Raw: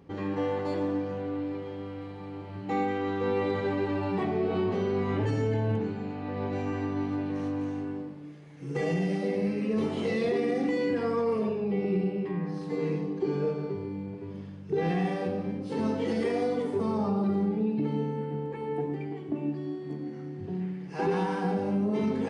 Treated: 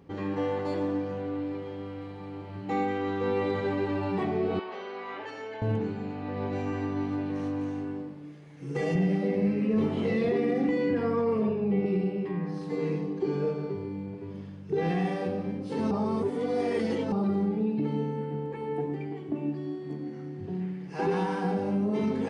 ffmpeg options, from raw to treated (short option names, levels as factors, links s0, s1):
-filter_complex "[0:a]asettb=1/sr,asplit=3[s0][s1][s2];[s0]atrim=end=4.594[s3];[s1]atrim=start=4.59:end=5.62,asetpts=PTS-STARTPTS,afade=t=in:d=0.004:c=qsin,afade=t=out:st=1.026:d=0.004:c=qsin,highpass=740,lowpass=4300[s4];[s2]atrim=start=5.616[s5];[s3][s4]acrossfade=d=0.004:c1=hsin:c2=qsin[s6];[s6][s5]acrossfade=d=0.004:c1=qsin:c2=hsin,asettb=1/sr,asplit=3[s7][s8][s9];[s7]atrim=end=8.954[s10];[s8]atrim=start=8.95:end=11.86,asetpts=PTS-STARTPTS,afade=t=in:d=0.004:c=qsin,afade=t=out:st=2.906:d=0.004:c=qsin,bass=f=250:g=5,treble=f=4000:g=-9[s11];[s9]atrim=start=11.856[s12];[s10][s11]acrossfade=d=0.004:c1=hsin:c2=qsin[s13];[s13][s12]acrossfade=d=0.004:c1=qsin:c2=hsin,asplit=3[s14][s15][s16];[s14]atrim=end=15.912[s17];[s15]atrim=start=15.908:end=17.122,asetpts=PTS-STARTPTS,areverse[s18];[s16]atrim=start=17.118[s19];[s17][s18]acrossfade=d=0.004:c1=hsin:c2=hsin[s20];[s20][s19]acrossfade=d=0.004:c1=hsin:c2=hsin"